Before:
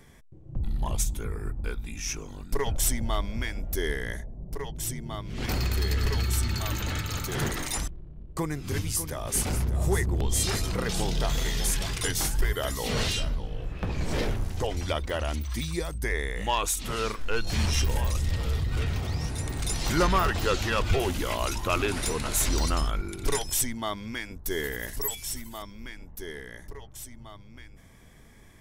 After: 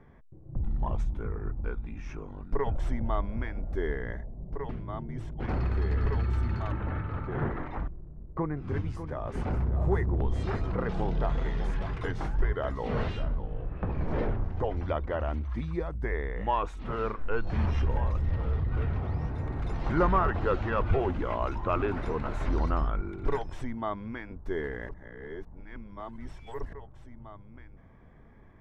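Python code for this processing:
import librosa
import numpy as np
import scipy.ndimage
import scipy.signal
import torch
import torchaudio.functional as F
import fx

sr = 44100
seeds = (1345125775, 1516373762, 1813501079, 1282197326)

y = fx.lowpass(x, sr, hz=2300.0, slope=12, at=(6.72, 8.57))
y = fx.edit(y, sr, fx.reverse_span(start_s=4.69, length_s=0.71),
    fx.reverse_span(start_s=24.89, length_s=1.84), tone=tone)
y = scipy.signal.sosfilt(scipy.signal.cheby1(2, 1.0, 1200.0, 'lowpass', fs=sr, output='sos'), y)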